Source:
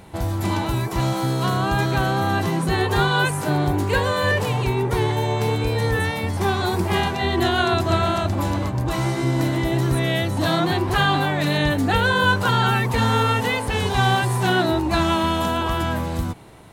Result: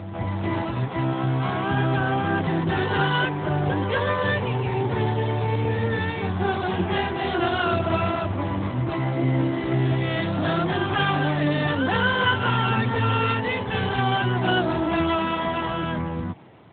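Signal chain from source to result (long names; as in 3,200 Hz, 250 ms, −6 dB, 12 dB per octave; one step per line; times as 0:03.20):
backwards echo 237 ms −7 dB
pitch-shifted copies added +12 semitones −9 dB
level −3 dB
AMR narrowband 12.2 kbit/s 8,000 Hz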